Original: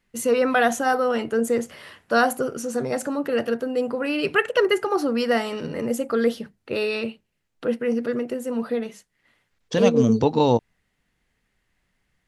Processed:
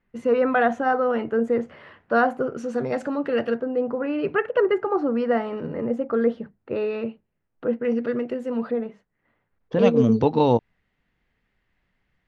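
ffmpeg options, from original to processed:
-af "asetnsamples=n=441:p=0,asendcmd='2.57 lowpass f 3100;3.59 lowpass f 1400;7.85 lowpass f 3100;8.71 lowpass f 1300;9.79 lowpass f 3200',lowpass=1.8k"

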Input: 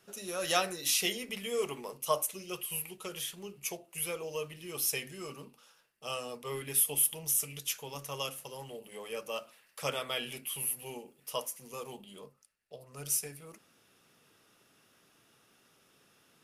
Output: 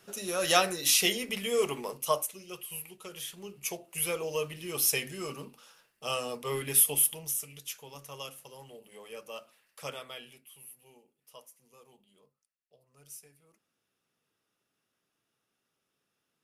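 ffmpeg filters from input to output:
-af "volume=13.5dB,afade=t=out:st=1.91:d=0.43:silence=0.375837,afade=t=in:st=3.1:d=1.05:silence=0.375837,afade=t=out:st=6.79:d=0.62:silence=0.316228,afade=t=out:st=9.86:d=0.57:silence=0.281838"

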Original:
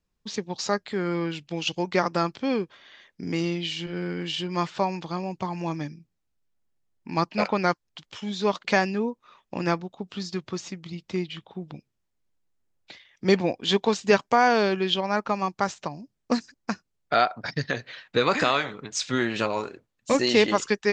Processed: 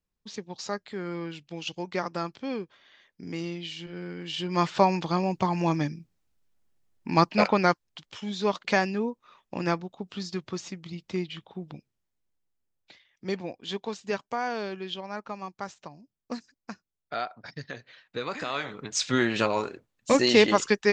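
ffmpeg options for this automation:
-af "volume=16.5dB,afade=t=in:st=4.24:d=0.56:silence=0.266073,afade=t=out:st=7.09:d=0.95:silence=0.473151,afade=t=out:st=11.7:d=1.6:silence=0.354813,afade=t=in:st=18.48:d=0.42:silence=0.251189"

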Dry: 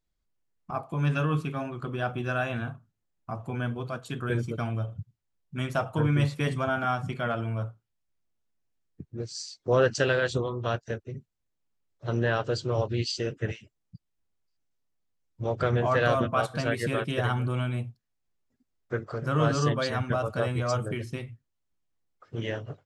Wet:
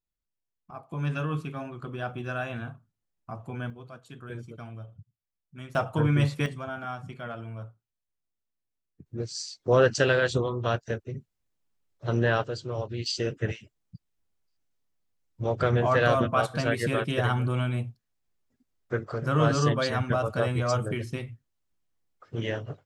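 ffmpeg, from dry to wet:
-af "asetnsamples=n=441:p=0,asendcmd='0.91 volume volume -3.5dB;3.7 volume volume -11dB;5.75 volume volume 1dB;6.46 volume volume -8dB;9.06 volume volume 2dB;12.44 volume volume -5dB;13.06 volume volume 1.5dB',volume=-10dB"

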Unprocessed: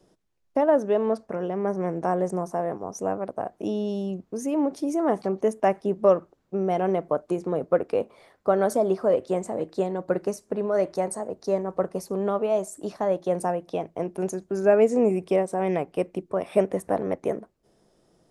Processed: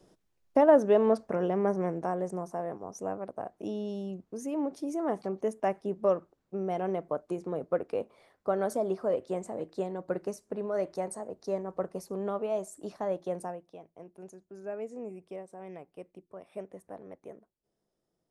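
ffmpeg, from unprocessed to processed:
-af "afade=t=out:st=1.53:d=0.59:silence=0.421697,afade=t=out:st=13.21:d=0.52:silence=0.251189"

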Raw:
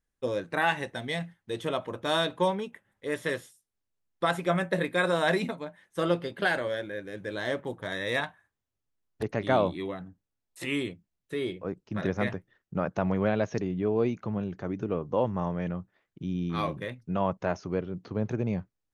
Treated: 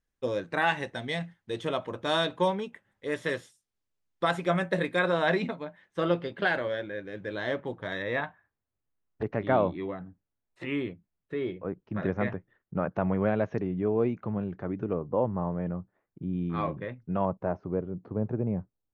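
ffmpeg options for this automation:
-af "asetnsamples=n=441:p=0,asendcmd='4.99 lowpass f 3900;8.02 lowpass f 2100;14.93 lowpass f 1200;16.33 lowpass f 1900;17.25 lowpass f 1000',lowpass=7.4k"

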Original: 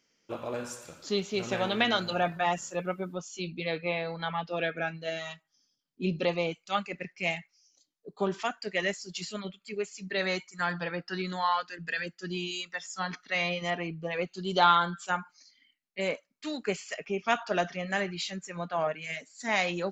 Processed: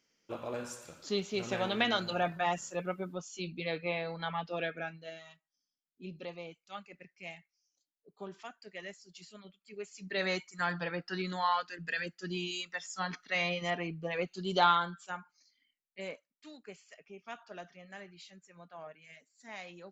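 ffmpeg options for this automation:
-af "volume=9dB,afade=t=out:st=4.49:d=0.75:silence=0.266073,afade=t=in:st=9.64:d=0.61:silence=0.237137,afade=t=out:st=14.56:d=0.48:silence=0.398107,afade=t=out:st=16.02:d=0.6:silence=0.421697"

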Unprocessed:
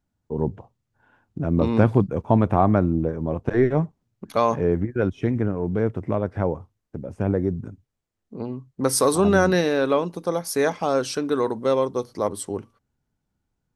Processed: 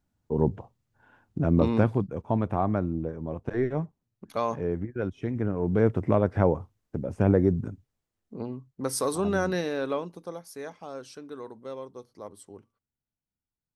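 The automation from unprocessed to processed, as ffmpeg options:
-af "volume=10dB,afade=t=out:st=1.45:d=0.49:silence=0.375837,afade=t=in:st=5.3:d=0.61:silence=0.334965,afade=t=out:st=7.61:d=1.21:silence=0.316228,afade=t=out:st=9.9:d=0.61:silence=0.354813"

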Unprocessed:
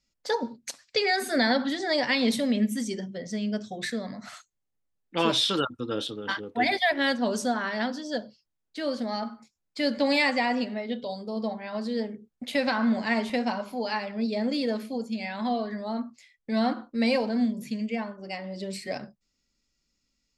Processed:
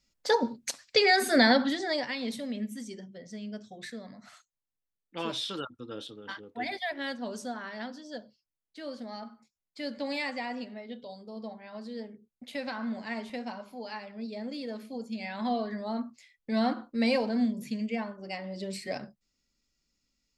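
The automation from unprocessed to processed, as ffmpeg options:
-af "volume=10.5dB,afade=t=out:st=1.45:d=0.67:silence=0.237137,afade=t=in:st=14.69:d=0.83:silence=0.398107"

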